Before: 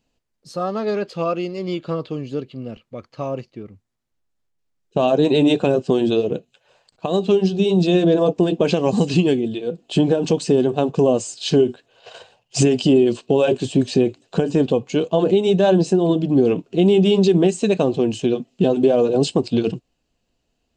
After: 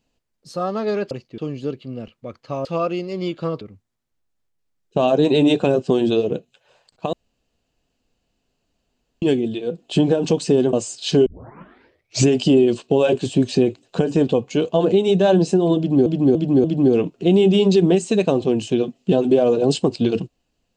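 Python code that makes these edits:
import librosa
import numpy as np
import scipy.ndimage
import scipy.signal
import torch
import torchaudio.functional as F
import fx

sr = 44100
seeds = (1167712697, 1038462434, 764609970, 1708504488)

y = fx.edit(x, sr, fx.swap(start_s=1.11, length_s=0.96, other_s=3.34, other_length_s=0.27),
    fx.room_tone_fill(start_s=7.13, length_s=2.09),
    fx.cut(start_s=10.73, length_s=0.39),
    fx.tape_start(start_s=11.65, length_s=1.01),
    fx.repeat(start_s=16.16, length_s=0.29, count=4), tone=tone)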